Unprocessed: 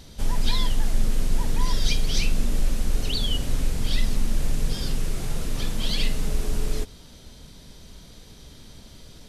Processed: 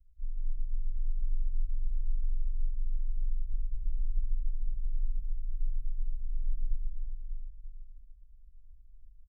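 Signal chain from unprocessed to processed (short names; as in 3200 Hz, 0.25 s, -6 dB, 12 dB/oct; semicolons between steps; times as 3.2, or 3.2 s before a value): inverse Chebyshev band-stop 270–7400 Hz, stop band 60 dB; passive tone stack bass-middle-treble 10-0-1; comb 6 ms, depth 84%; compressor, threshold -21 dBFS, peak gain reduction 7.5 dB; plate-style reverb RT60 2.5 s, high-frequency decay 0.55×, pre-delay 0.12 s, DRR -4.5 dB; gain -7.5 dB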